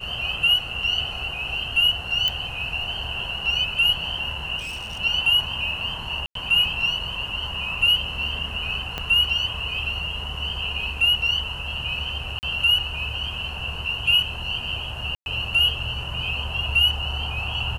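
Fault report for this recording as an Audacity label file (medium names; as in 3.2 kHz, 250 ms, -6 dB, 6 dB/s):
2.280000	2.280000	pop -9 dBFS
4.580000	5.000000	clipped -29 dBFS
6.260000	6.350000	dropout 93 ms
8.980000	8.980000	pop -13 dBFS
12.390000	12.430000	dropout 39 ms
15.150000	15.260000	dropout 111 ms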